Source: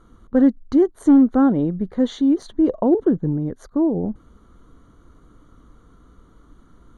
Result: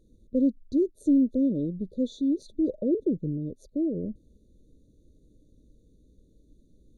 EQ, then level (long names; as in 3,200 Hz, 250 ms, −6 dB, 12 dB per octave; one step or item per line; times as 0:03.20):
linear-phase brick-wall band-stop 640–3,400 Hz
−8.5 dB